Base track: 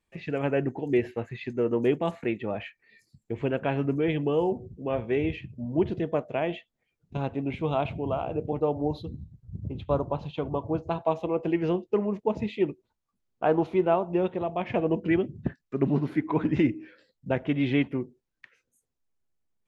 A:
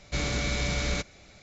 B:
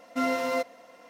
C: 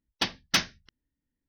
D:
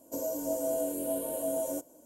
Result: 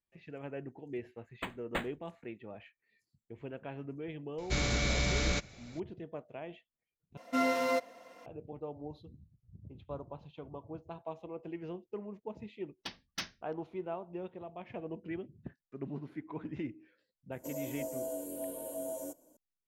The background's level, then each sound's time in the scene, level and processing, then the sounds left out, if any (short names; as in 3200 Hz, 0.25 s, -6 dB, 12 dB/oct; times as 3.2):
base track -16 dB
1.21 add C -9.5 dB + decimation joined by straight lines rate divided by 8×
4.38 add A -2 dB
7.17 replace with B -2.5 dB
12.64 add C -15 dB
17.32 add D -7.5 dB